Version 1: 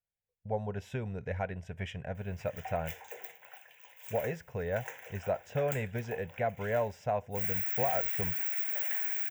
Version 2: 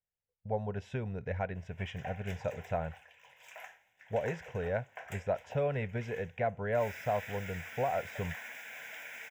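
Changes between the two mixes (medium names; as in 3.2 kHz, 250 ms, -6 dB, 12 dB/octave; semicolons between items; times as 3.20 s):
background: entry -0.60 s; master: add distance through air 65 m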